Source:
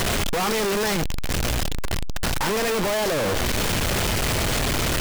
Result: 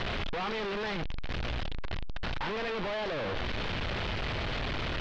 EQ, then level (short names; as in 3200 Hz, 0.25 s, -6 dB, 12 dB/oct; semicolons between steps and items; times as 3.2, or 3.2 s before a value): inverse Chebyshev low-pass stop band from 11000 Hz, stop band 60 dB; bell 260 Hz -3 dB 3 oct; -8.5 dB